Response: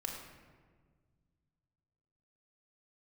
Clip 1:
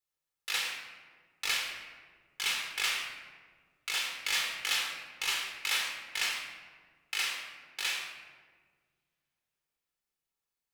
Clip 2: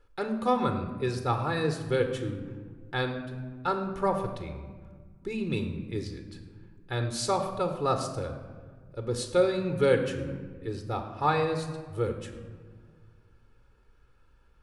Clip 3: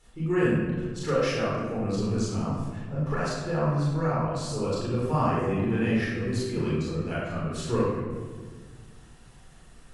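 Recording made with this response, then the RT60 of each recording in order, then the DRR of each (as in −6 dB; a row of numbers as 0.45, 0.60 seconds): 1; 1.6, 1.7, 1.6 seconds; 0.5, 6.0, −8.0 decibels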